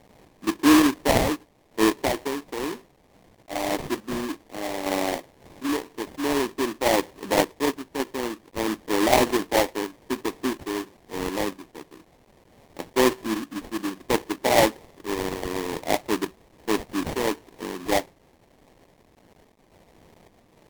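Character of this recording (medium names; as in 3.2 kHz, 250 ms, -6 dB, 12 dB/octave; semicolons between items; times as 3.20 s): a quantiser's noise floor 10-bit, dither triangular; random-step tremolo; aliases and images of a low sample rate 1.4 kHz, jitter 20%; Vorbis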